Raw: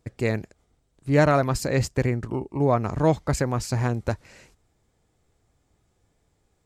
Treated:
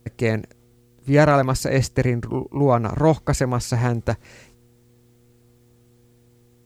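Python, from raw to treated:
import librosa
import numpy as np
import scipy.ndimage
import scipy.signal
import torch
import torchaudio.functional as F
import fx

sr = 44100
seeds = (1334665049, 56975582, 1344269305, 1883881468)

y = fx.dmg_buzz(x, sr, base_hz=120.0, harmonics=4, level_db=-60.0, tilt_db=-4, odd_only=False)
y = fx.quant_dither(y, sr, seeds[0], bits=12, dither='triangular')
y = y * 10.0 ** (3.5 / 20.0)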